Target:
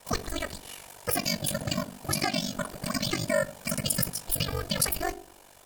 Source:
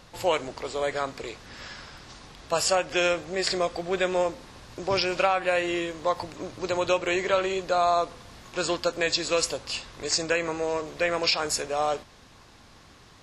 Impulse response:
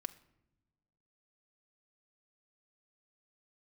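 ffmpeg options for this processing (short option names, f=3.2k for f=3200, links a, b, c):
-filter_complex "[0:a]afreqshift=-440[a];[1:a]atrim=start_sample=2205[b];[a][b]afir=irnorm=-1:irlink=0,asetrate=103194,aresample=44100,aeval=exprs='val(0)*sin(2*PI*24*n/s)':c=same,highshelf=f=4.6k:g=5,asplit=2[c][d];[d]asoftclip=type=tanh:threshold=-24dB,volume=-11dB[e];[c][e]amix=inputs=2:normalize=0"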